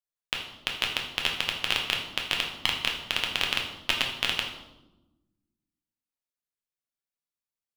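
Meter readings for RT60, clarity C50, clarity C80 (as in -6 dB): 1.0 s, 5.5 dB, 8.5 dB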